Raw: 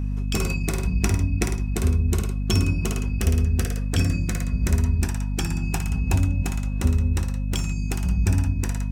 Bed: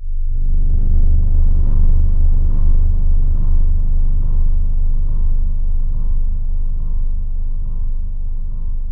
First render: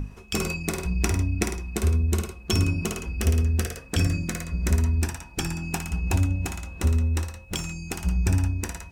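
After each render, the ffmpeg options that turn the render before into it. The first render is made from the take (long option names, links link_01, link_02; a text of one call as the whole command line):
ffmpeg -i in.wav -af "bandreject=frequency=50:width_type=h:width=6,bandreject=frequency=100:width_type=h:width=6,bandreject=frequency=150:width_type=h:width=6,bandreject=frequency=200:width_type=h:width=6,bandreject=frequency=250:width_type=h:width=6" out.wav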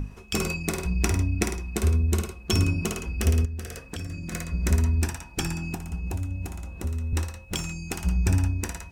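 ffmpeg -i in.wav -filter_complex "[0:a]asettb=1/sr,asplit=3[link_01][link_02][link_03];[link_01]atrim=end=3.454[link_04];[link_02]atrim=start=3.45:end=4.32,asetpts=PTS-STARTPTS,afade=type=in:duration=0.004:curve=qsin,afade=type=out:start_time=0.866:duration=0.004:curve=qsin,acompressor=threshold=-31dB:ratio=6:attack=3.2:release=140:knee=1:detection=peak[link_05];[link_03]atrim=start=4.316[link_06];[link_04][link_05]acrossfade=duration=0.004:curve1=hsin:curve2=qsin[link_07];[link_07][link_06]acrossfade=duration=0.004:curve1=qsin:curve2=hsin,asettb=1/sr,asplit=3[link_08][link_09][link_10];[link_08]atrim=end=5.744[link_11];[link_09]atrim=start=5.74:end=7.13,asetpts=PTS-STARTPTS,afade=type=in:duration=0.004:curve=qsin,afade=type=out:start_time=1.386:duration=0.004:curve=qsin,acrossover=split=83|920|7900[link_12][link_13][link_14][link_15];[link_12]acompressor=threshold=-33dB:ratio=3[link_16];[link_13]acompressor=threshold=-35dB:ratio=3[link_17];[link_14]acompressor=threshold=-50dB:ratio=3[link_18];[link_15]acompressor=threshold=-49dB:ratio=3[link_19];[link_16][link_17][link_18][link_19]amix=inputs=4:normalize=0[link_20];[link_10]atrim=start=7.126[link_21];[link_11][link_20]acrossfade=duration=0.004:curve1=hsin:curve2=qsin[link_22];[link_22][link_21]acrossfade=duration=0.004:curve1=qsin:curve2=hsin" out.wav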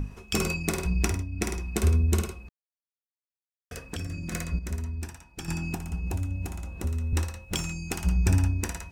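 ffmpeg -i in.wav -filter_complex "[0:a]asplit=7[link_01][link_02][link_03][link_04][link_05][link_06][link_07];[link_01]atrim=end=1.25,asetpts=PTS-STARTPTS,afade=type=out:start_time=0.98:duration=0.27:silence=0.316228[link_08];[link_02]atrim=start=1.25:end=1.3,asetpts=PTS-STARTPTS,volume=-10dB[link_09];[link_03]atrim=start=1.3:end=2.49,asetpts=PTS-STARTPTS,afade=type=in:duration=0.27:silence=0.316228,afade=type=out:start_time=1.186:duration=0.004:curve=hsin[link_10];[link_04]atrim=start=2.49:end=3.71,asetpts=PTS-STARTPTS,volume=0[link_11];[link_05]atrim=start=3.71:end=4.592,asetpts=PTS-STARTPTS,afade=type=in:duration=0.004:curve=hsin[link_12];[link_06]atrim=start=4.588:end=5.482,asetpts=PTS-STARTPTS,volume=-10.5dB[link_13];[link_07]atrim=start=5.478[link_14];[link_08][link_09][link_10][link_11][link_12]concat=n=5:v=0:a=1[link_15];[link_15][link_13]acrossfade=duration=0.004:curve1=hsin:curve2=hsin[link_16];[link_16][link_14]acrossfade=duration=0.004:curve1=hsin:curve2=hsin" out.wav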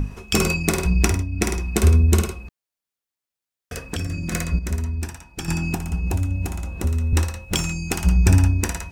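ffmpeg -i in.wav -af "volume=7.5dB" out.wav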